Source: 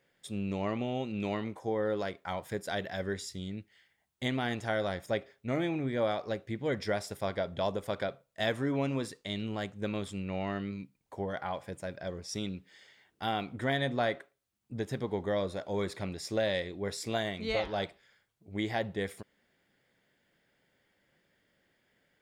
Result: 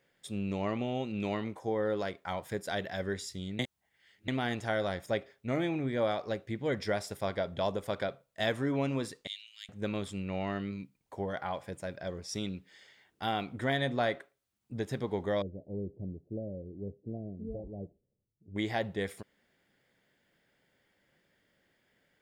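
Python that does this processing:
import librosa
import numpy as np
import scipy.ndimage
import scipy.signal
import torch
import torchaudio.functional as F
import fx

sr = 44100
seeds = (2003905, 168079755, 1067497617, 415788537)

y = fx.cheby2_highpass(x, sr, hz=450.0, order=4, stop_db=80, at=(9.27, 9.69))
y = fx.gaussian_blur(y, sr, sigma=21.0, at=(15.42, 18.56))
y = fx.edit(y, sr, fx.reverse_span(start_s=3.59, length_s=0.69), tone=tone)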